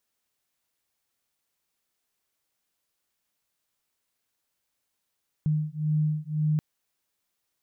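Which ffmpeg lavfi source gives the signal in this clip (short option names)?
-f lavfi -i "aevalsrc='0.0473*(sin(2*PI*152*t)+sin(2*PI*153.9*t))':d=1.13:s=44100"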